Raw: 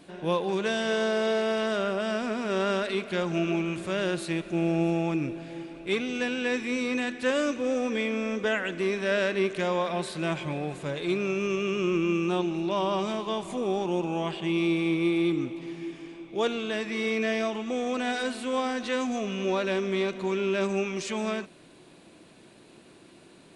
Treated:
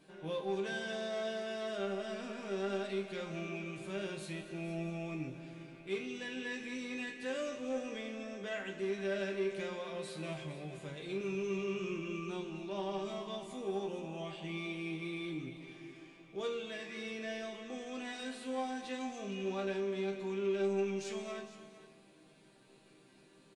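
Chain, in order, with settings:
dynamic equaliser 1,200 Hz, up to −4 dB, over −42 dBFS, Q 0.92
resonators tuned to a chord C3 minor, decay 0.25 s
in parallel at −3 dB: soft clipping −37.5 dBFS, distortion −11 dB
0:11.18–0:11.94: on the sum: double-tracking delay 27 ms −5 dB
on a send: multi-tap delay 234/459 ms −16.5/−14.5 dB
on the sum: four-comb reverb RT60 1.5 s, combs from 32 ms, DRR 11 dB
level −1.5 dB

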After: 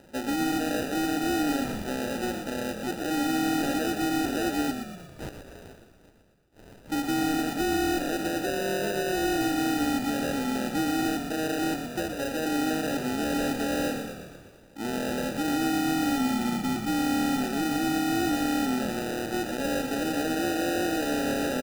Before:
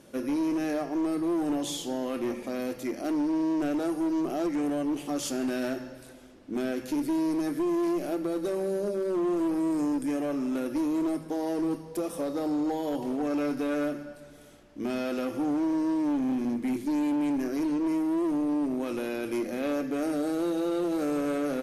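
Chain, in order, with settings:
0:04.71–0:06.90: Bessel high-pass filter 2,900 Hz, order 8
decimation without filtering 40×
echo with shifted repeats 120 ms, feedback 53%, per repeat −39 Hz, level −7.5 dB

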